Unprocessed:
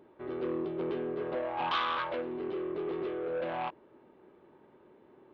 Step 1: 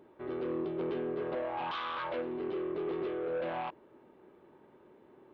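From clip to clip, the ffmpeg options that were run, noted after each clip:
-af "alimiter=level_in=5dB:limit=-24dB:level=0:latency=1:release=11,volume=-5dB"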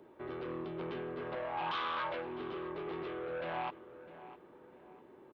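-filter_complex "[0:a]bandreject=f=50:t=h:w=6,bandreject=f=100:t=h:w=6,bandreject=f=150:t=h:w=6,bandreject=f=200:t=h:w=6,bandreject=f=250:t=h:w=6,acrossover=split=210|700|1700[a][b][c][d];[b]acompressor=threshold=-46dB:ratio=6[e];[a][e][c][d]amix=inputs=4:normalize=0,asplit=2[f][g];[g]adelay=655,lowpass=f=2.8k:p=1,volume=-15dB,asplit=2[h][i];[i]adelay=655,lowpass=f=2.8k:p=1,volume=0.39,asplit=2[j][k];[k]adelay=655,lowpass=f=2.8k:p=1,volume=0.39,asplit=2[l][m];[m]adelay=655,lowpass=f=2.8k:p=1,volume=0.39[n];[f][h][j][l][n]amix=inputs=5:normalize=0,volume=1dB"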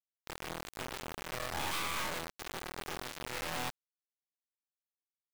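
-filter_complex "[0:a]acrossover=split=240[a][b];[b]crystalizer=i=3:c=0[c];[a][c]amix=inputs=2:normalize=0,acrusher=bits=3:dc=4:mix=0:aa=0.000001,volume=1dB"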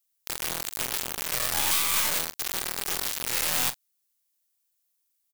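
-filter_complex "[0:a]asplit=2[a][b];[b]alimiter=level_in=6dB:limit=-24dB:level=0:latency=1:release=135,volume=-6dB,volume=1dB[c];[a][c]amix=inputs=2:normalize=0,crystalizer=i=4.5:c=0,asplit=2[d][e];[e]adelay=41,volume=-13.5dB[f];[d][f]amix=inputs=2:normalize=0,volume=-2.5dB"

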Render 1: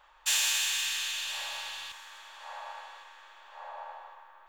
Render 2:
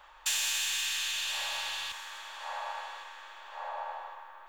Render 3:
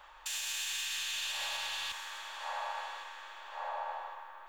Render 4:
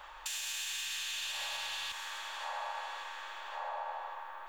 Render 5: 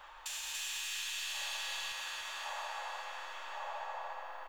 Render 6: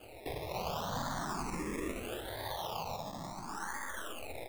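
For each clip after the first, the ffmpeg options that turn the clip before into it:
-filter_complex "[0:a]acrossover=split=160[a][b];[b]acompressor=threshold=-37dB:ratio=2.5[c];[a][c]amix=inputs=2:normalize=0,volume=5dB"
-af "alimiter=level_in=4dB:limit=-24dB:level=0:latency=1:release=136,volume=-4dB"
-af "acompressor=threshold=-46dB:ratio=2,volume=5dB"
-af "flanger=delay=7.4:depth=8.2:regen=-41:speed=1.1:shape=triangular,aecho=1:1:289|578|867|1156|1445|1734|2023:0.708|0.375|0.199|0.105|0.0559|0.0296|0.0157,volume=1dB"
-filter_complex "[0:a]acrusher=samples=23:mix=1:aa=0.000001:lfo=1:lforange=13.8:lforate=0.72,asplit=2[a][b];[b]afreqshift=0.47[c];[a][c]amix=inputs=2:normalize=1,volume=5dB"

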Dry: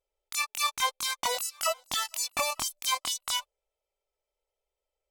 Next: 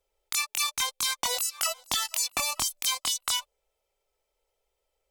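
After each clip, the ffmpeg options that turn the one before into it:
-filter_complex "[0:a]acrossover=split=170|3000[a][b][c];[b]acompressor=threshold=-35dB:ratio=6[d];[a][d][c]amix=inputs=3:normalize=0,bandreject=f=600:w=18,acompressor=threshold=-34dB:ratio=2.5,volume=8dB"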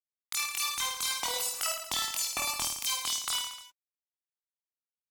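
-filter_complex "[0:a]acrusher=bits=6:mix=0:aa=0.5,asplit=2[a][b];[b]aecho=0:1:50|105|165.5|232|305.3:0.631|0.398|0.251|0.158|0.1[c];[a][c]amix=inputs=2:normalize=0,volume=-5dB"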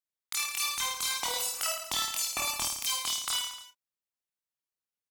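-filter_complex "[0:a]asplit=2[a][b];[b]adelay=31,volume=-9.5dB[c];[a][c]amix=inputs=2:normalize=0"

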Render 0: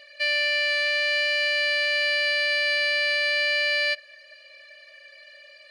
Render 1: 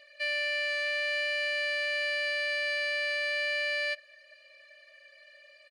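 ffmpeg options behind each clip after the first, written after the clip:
-af "aecho=1:1:3.3:0.33,volume=-7.5dB"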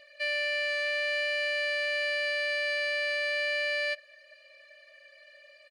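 -af "lowshelf=f=470:g=7"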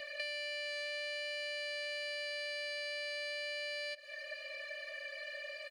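-filter_complex "[0:a]acrossover=split=480|3000[a][b][c];[b]acompressor=threshold=-45dB:ratio=3[d];[a][d][c]amix=inputs=3:normalize=0,alimiter=level_in=9dB:limit=-24dB:level=0:latency=1:release=136,volume=-9dB,acompressor=threshold=-48dB:ratio=4,volume=10dB"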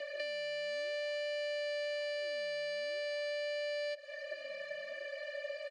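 -filter_complex "[0:a]acrossover=split=330|4100[a][b][c];[a]acrusher=samples=33:mix=1:aa=0.000001:lfo=1:lforange=52.8:lforate=0.48[d];[d][b][c]amix=inputs=3:normalize=0,highpass=180,equalizer=f=380:t=q:w=4:g=7,equalizer=f=560:t=q:w=4:g=9,equalizer=f=2.5k:t=q:w=4:g=-5,equalizer=f=4.3k:t=q:w=4:g=-4,lowpass=f=7.9k:w=0.5412,lowpass=f=7.9k:w=1.3066"

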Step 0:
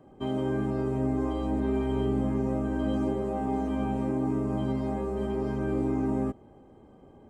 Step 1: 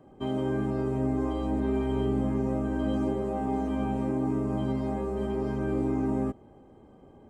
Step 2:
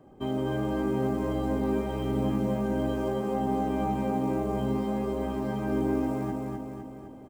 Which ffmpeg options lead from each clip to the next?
-af anull
-filter_complex "[0:a]acrusher=bits=9:mode=log:mix=0:aa=0.000001,asplit=2[a][b];[b]aecho=0:1:254|508|762|1016|1270|1524|1778|2032:0.708|0.389|0.214|0.118|0.0648|0.0356|0.0196|0.0108[c];[a][c]amix=inputs=2:normalize=0"

